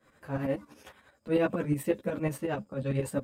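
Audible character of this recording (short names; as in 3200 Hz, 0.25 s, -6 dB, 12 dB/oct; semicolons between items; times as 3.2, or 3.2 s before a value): tremolo saw up 11 Hz, depth 80%; a shimmering, thickened sound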